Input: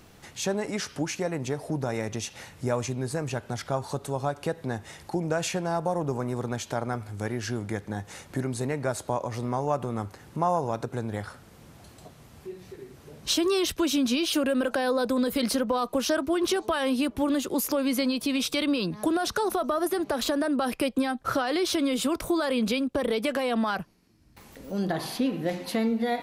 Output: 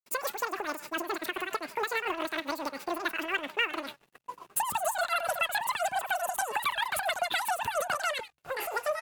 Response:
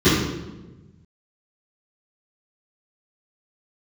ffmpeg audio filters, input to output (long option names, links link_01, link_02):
-filter_complex "[0:a]asplit=2[link_01][link_02];[link_02]asoftclip=type=tanh:threshold=-27dB,volume=-8dB[link_03];[link_01][link_03]amix=inputs=2:normalize=0,equalizer=frequency=100:width_type=o:width=0.33:gain=-4,equalizer=frequency=2000:width_type=o:width=0.33:gain=-5,equalizer=frequency=10000:width_type=o:width=0.33:gain=6,asplit=4[link_04][link_05][link_06][link_07];[link_05]adelay=281,afreqshift=110,volume=-14.5dB[link_08];[link_06]adelay=562,afreqshift=220,volume=-25dB[link_09];[link_07]adelay=843,afreqshift=330,volume=-35.4dB[link_10];[link_04][link_08][link_09][link_10]amix=inputs=4:normalize=0,agate=range=-33dB:threshold=-38dB:ratio=3:detection=peak,aeval=exprs='sgn(val(0))*max(abs(val(0))-0.00178,0)':channel_layout=same,asetrate=128331,aresample=44100,acompressor=threshold=-27dB:ratio=2,bandreject=frequency=71.58:width_type=h:width=4,bandreject=frequency=143.16:width_type=h:width=4,tremolo=f=7.2:d=0.65,asetrate=40440,aresample=44100,atempo=1.09051,equalizer=frequency=2700:width=7.2:gain=6.5"